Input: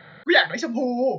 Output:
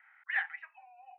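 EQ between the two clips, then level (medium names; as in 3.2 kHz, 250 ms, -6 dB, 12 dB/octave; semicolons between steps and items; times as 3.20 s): Chebyshev band-pass 750–2700 Hz, order 5; differentiator; 0.0 dB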